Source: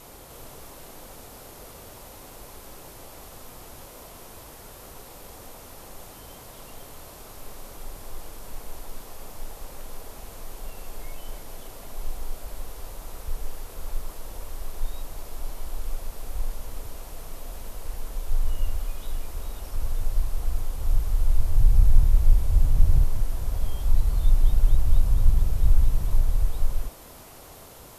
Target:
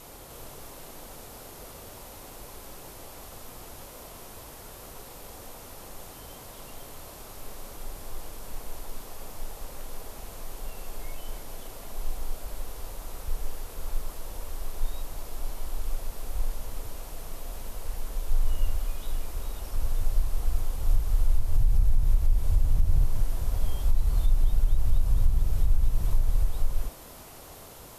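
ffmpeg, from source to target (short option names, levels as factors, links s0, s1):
-filter_complex "[0:a]bandreject=f=65.2:t=h:w=4,bandreject=f=130.4:t=h:w=4,bandreject=f=195.6:t=h:w=4,bandreject=f=260.8:t=h:w=4,bandreject=f=326:t=h:w=4,bandreject=f=391.2:t=h:w=4,bandreject=f=456.4:t=h:w=4,bandreject=f=521.6:t=h:w=4,bandreject=f=586.8:t=h:w=4,bandreject=f=652:t=h:w=4,bandreject=f=717.2:t=h:w=4,bandreject=f=782.4:t=h:w=4,bandreject=f=847.6:t=h:w=4,bandreject=f=912.8:t=h:w=4,bandreject=f=978:t=h:w=4,bandreject=f=1043.2:t=h:w=4,bandreject=f=1108.4:t=h:w=4,bandreject=f=1173.6:t=h:w=4,bandreject=f=1238.8:t=h:w=4,bandreject=f=1304:t=h:w=4,bandreject=f=1369.2:t=h:w=4,bandreject=f=1434.4:t=h:w=4,bandreject=f=1499.6:t=h:w=4,bandreject=f=1564.8:t=h:w=4,bandreject=f=1630:t=h:w=4,bandreject=f=1695.2:t=h:w=4,bandreject=f=1760.4:t=h:w=4,bandreject=f=1825.6:t=h:w=4,bandreject=f=1890.8:t=h:w=4,bandreject=f=1956:t=h:w=4,bandreject=f=2021.2:t=h:w=4,bandreject=f=2086.4:t=h:w=4,bandreject=f=2151.6:t=h:w=4,bandreject=f=2216.8:t=h:w=4,bandreject=f=2282:t=h:w=4,bandreject=f=2347.2:t=h:w=4,bandreject=f=2412.4:t=h:w=4,bandreject=f=2477.6:t=h:w=4,alimiter=limit=0.237:level=0:latency=1:release=182,asettb=1/sr,asplit=3[s0][s1][s2];[s0]atrim=end=25.154[s3];[s1]atrim=start=25.15:end=26.33,asetpts=PTS-STARTPTS,afade=t=in:d=0.004:c=qsin,afade=t=out:st=1.176:d=0.004:c=qsin,aeval=exprs='val(0)*gte(abs(val(0)),0.0015)':c=same[s4];[s2]atrim=start=26.326[s5];[s3][s4]acrossfade=d=0.004:c1=hsin:c2=qsin[s6];[s6][s5]acrossfade=d=0.004:c1=qsin:c2=hsin"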